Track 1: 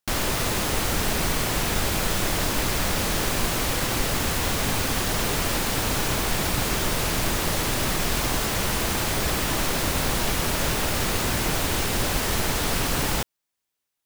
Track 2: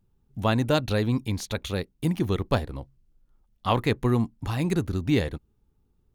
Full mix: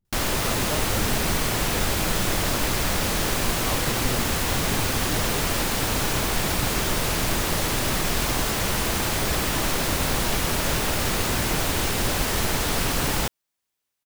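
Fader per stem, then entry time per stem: +0.5 dB, -9.5 dB; 0.05 s, 0.00 s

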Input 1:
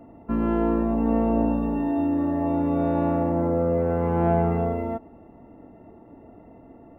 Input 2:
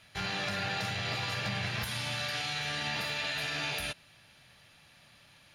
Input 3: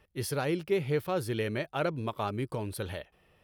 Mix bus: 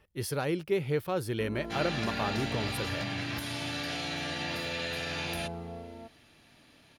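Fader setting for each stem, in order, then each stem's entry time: -17.5 dB, -2.0 dB, -0.5 dB; 1.10 s, 1.55 s, 0.00 s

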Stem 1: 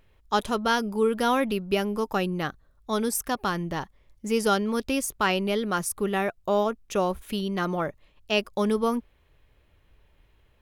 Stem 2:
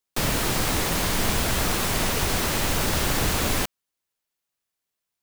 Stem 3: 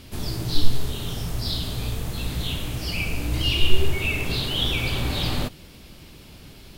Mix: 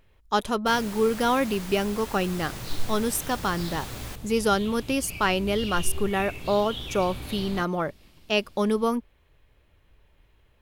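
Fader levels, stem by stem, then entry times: +0.5 dB, -15.0 dB, -12.0 dB; 0.00 s, 0.50 s, 2.15 s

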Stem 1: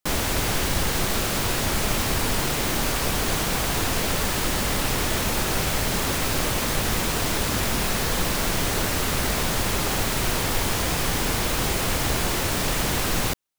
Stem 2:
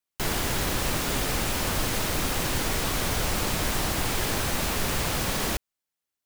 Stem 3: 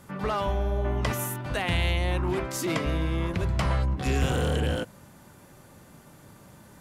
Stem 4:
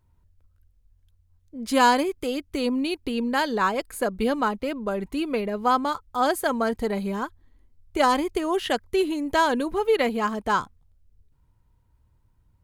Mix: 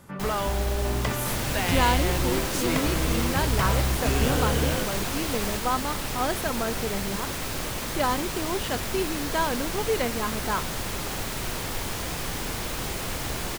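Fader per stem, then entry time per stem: -7.0 dB, -7.0 dB, 0.0 dB, -5.5 dB; 1.20 s, 0.00 s, 0.00 s, 0.00 s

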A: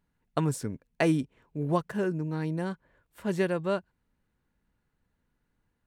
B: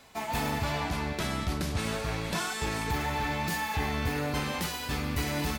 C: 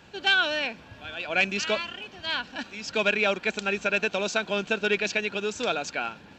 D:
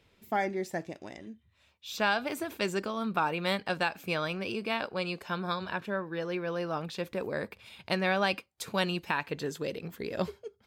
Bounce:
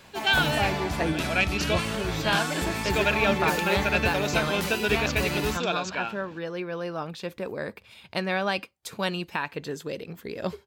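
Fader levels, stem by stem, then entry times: -4.5 dB, +1.0 dB, -1.0 dB, +1.0 dB; 0.00 s, 0.00 s, 0.00 s, 0.25 s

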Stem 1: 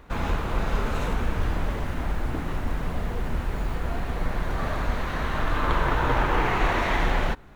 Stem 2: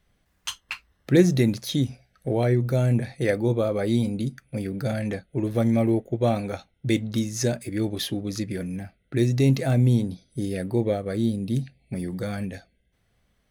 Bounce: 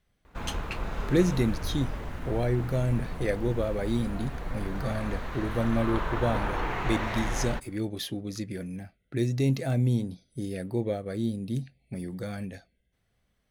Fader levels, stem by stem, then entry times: -7.5 dB, -5.5 dB; 0.25 s, 0.00 s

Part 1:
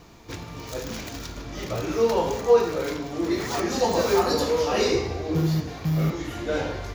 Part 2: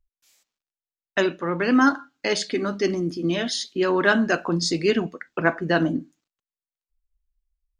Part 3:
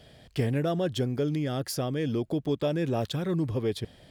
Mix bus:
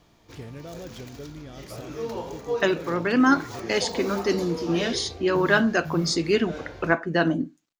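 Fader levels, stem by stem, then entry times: -10.5 dB, -1.0 dB, -12.5 dB; 0.00 s, 1.45 s, 0.00 s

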